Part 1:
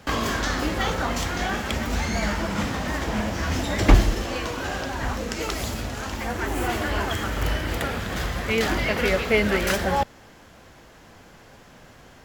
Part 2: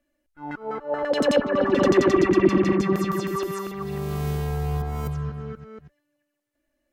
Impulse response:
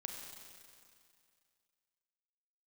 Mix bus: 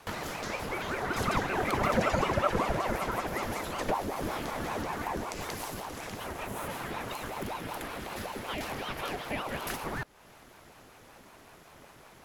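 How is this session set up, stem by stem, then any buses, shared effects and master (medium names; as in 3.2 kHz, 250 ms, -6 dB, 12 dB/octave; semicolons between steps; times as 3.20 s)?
-2.5 dB, 0.00 s, no send, compression 2:1, threshold -34 dBFS, peak gain reduction 14 dB
-3.0 dB, 0.00 s, no send, peaking EQ 1.4 kHz +13 dB 0.33 oct; flange 1.1 Hz, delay 8 ms, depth 8 ms, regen +71%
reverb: none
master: peaking EQ 11 kHz +11 dB 0.38 oct; ring modulator with a swept carrier 560 Hz, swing 75%, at 5.3 Hz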